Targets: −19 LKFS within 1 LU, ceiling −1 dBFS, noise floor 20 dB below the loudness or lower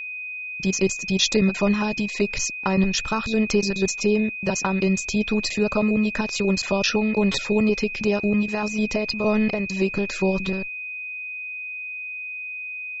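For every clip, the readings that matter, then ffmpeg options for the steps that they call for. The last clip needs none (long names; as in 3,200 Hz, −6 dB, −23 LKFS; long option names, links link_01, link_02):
interfering tone 2,500 Hz; level of the tone −30 dBFS; integrated loudness −23.0 LKFS; sample peak −7.0 dBFS; target loudness −19.0 LKFS
→ -af "bandreject=frequency=2500:width=30"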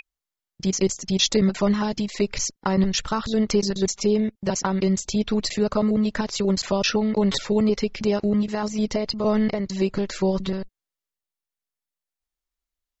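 interfering tone none found; integrated loudness −23.5 LKFS; sample peak −7.5 dBFS; target loudness −19.0 LKFS
→ -af "volume=4.5dB"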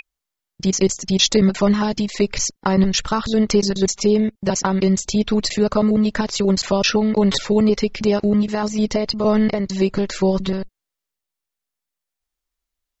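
integrated loudness −19.0 LKFS; sample peak −3.0 dBFS; background noise floor −84 dBFS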